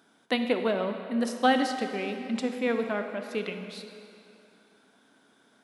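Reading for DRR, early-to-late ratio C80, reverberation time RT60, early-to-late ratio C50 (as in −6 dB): 6.0 dB, 7.5 dB, 2.8 s, 6.5 dB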